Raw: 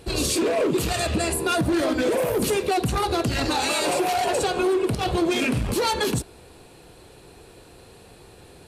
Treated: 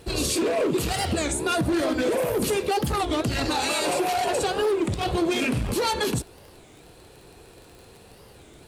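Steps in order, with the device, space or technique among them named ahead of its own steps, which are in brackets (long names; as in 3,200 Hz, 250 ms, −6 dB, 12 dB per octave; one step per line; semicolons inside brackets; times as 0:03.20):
warped LP (wow of a warped record 33 1/3 rpm, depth 250 cents; surface crackle 30 per second −36 dBFS; pink noise bed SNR 39 dB)
level −1.5 dB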